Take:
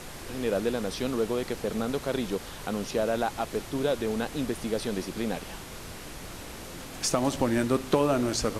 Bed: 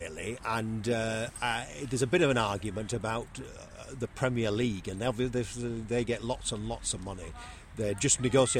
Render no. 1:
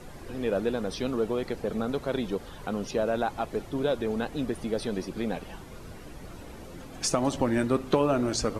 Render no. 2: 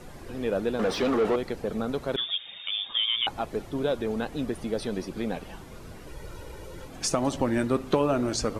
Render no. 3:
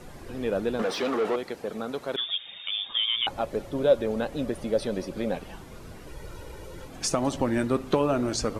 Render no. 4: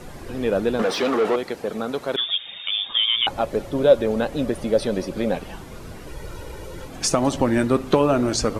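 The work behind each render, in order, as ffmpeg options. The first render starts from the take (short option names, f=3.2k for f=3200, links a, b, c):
-af "afftdn=nr=11:nf=-42"
-filter_complex "[0:a]asettb=1/sr,asplit=3[a][b][c];[a]atrim=end=0.794[d];[b]atrim=start=0.79:end=1.36,asetpts=PTS-STARTPTS,afade=t=in:d=0.004:c=qsin,afade=t=out:st=0.566:d=0.004:c=qsin,asplit=2[e][f];[f]highpass=f=720:p=1,volume=25dB,asoftclip=type=tanh:threshold=-15.5dB[g];[e][g]amix=inputs=2:normalize=0,lowpass=f=1.5k:p=1,volume=-6dB[h];[c]atrim=start=1.356[i];[d][h]acrossfade=d=0.004:c1=hsin:c2=qsin[j];[j][i]acrossfade=d=0.004:c1=qsin:c2=hsin,asettb=1/sr,asplit=3[k][l][m];[k]atrim=end=2.164[n];[l]atrim=start=2.16:end=3.27,asetpts=PTS-STARTPTS,afade=t=in:d=0.004:c=qsin,afade=t=out:st=1.106:d=0.004:c=qsin,lowpass=f=3.1k:t=q:w=0.5098,lowpass=f=3.1k:t=q:w=0.6013,lowpass=f=3.1k:t=q:w=0.9,lowpass=f=3.1k:t=q:w=2.563,afreqshift=-3700[o];[m]atrim=start=3.266[p];[n][o]acrossfade=d=0.004:c1=hsin:c2=qsin[q];[q][p]acrossfade=d=0.004:c1=qsin:c2=hsin,asettb=1/sr,asplit=3[r][s][t];[r]atrim=end=6.074[u];[s]atrim=start=6.07:end=6.88,asetpts=PTS-STARTPTS,afade=t=in:d=0.004:c=qsin,afade=t=out:st=0.806:d=0.004:c=qsin,aecho=1:1:2.1:0.65,atrim=end_sample=35721[v];[t]atrim=start=6.876[w];[u][v]acrossfade=d=0.004:c1=hsin:c2=qsin[x];[x][w]acrossfade=d=0.004:c1=qsin:c2=hsin"
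-filter_complex "[0:a]asettb=1/sr,asplit=3[a][b][c];[a]atrim=end=0.824[d];[b]atrim=start=0.82:end=2.29,asetpts=PTS-STARTPTS,afade=t=in:d=0.004:c=qsin,afade=t=out:st=1.466:d=0.004:c=qsin,highpass=f=350:p=1[e];[c]atrim=start=2.286[f];[d][e]acrossfade=d=0.004:c1=hsin:c2=qsin[g];[g][f]acrossfade=d=0.004:c1=qsin:c2=hsin,asettb=1/sr,asplit=3[h][i][j];[h]atrim=end=3.304[k];[i]atrim=start=3.3:end=5.35,asetpts=PTS-STARTPTS,afade=t=in:d=0.004:c=qsin,afade=t=out:st=2.046:d=0.004:c=qsin,equalizer=f=560:t=o:w=0.2:g=11.5[l];[j]atrim=start=5.346[m];[k][l]acrossfade=d=0.004:c1=hsin:c2=qsin[n];[n][m]acrossfade=d=0.004:c1=qsin:c2=hsin"
-af "volume=6dB"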